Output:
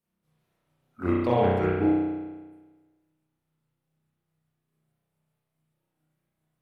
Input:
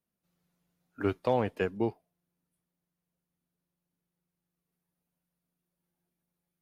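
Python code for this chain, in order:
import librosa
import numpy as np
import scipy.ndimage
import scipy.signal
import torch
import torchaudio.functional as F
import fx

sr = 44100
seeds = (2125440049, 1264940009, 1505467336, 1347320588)

y = fx.pitch_ramps(x, sr, semitones=-3.5, every_ms=410)
y = fx.rev_spring(y, sr, rt60_s=1.3, pass_ms=(32,), chirp_ms=35, drr_db=-7.5)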